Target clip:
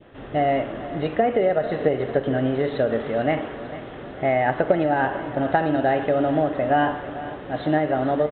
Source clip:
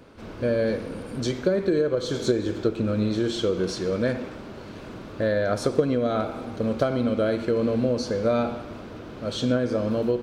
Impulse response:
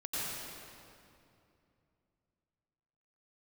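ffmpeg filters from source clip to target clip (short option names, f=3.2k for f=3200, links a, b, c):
-filter_complex "[0:a]adynamicequalizer=threshold=0.0112:dfrequency=1000:dqfactor=0.83:tfrequency=1000:tqfactor=0.83:attack=5:release=100:ratio=0.375:range=2.5:mode=boostabove:tftype=bell,asetrate=54243,aresample=44100,asplit=2[a][b];[b]aecho=0:1:447|894|1341|1788|2235:0.178|0.0942|0.05|0.0265|0.014[c];[a][c]amix=inputs=2:normalize=0,aresample=8000,aresample=44100,volume=1dB"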